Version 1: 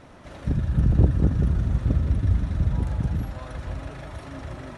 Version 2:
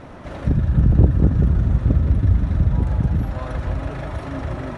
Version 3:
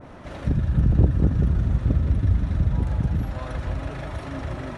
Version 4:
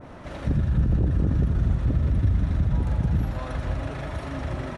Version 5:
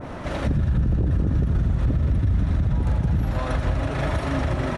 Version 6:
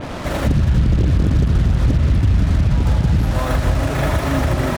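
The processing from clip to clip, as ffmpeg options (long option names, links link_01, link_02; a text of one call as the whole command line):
ffmpeg -i in.wav -filter_complex "[0:a]highshelf=frequency=3000:gain=-9.5,asplit=2[link_01][link_02];[link_02]acompressor=threshold=-29dB:ratio=6,volume=2dB[link_03];[link_01][link_03]amix=inputs=2:normalize=0,volume=2.5dB" out.wav
ffmpeg -i in.wav -af "adynamicequalizer=threshold=0.00562:dfrequency=1900:dqfactor=0.7:tfrequency=1900:tqfactor=0.7:attack=5:release=100:ratio=0.375:range=2:mode=boostabove:tftype=highshelf,volume=-4dB" out.wav
ffmpeg -i in.wav -af "alimiter=limit=-14.5dB:level=0:latency=1:release=29,aecho=1:1:90:0.316" out.wav
ffmpeg -i in.wav -af "alimiter=limit=-22.5dB:level=0:latency=1:release=154,volume=8.5dB" out.wav
ffmpeg -i in.wav -af "acrusher=bits=5:mix=0:aa=0.5,volume=6dB" out.wav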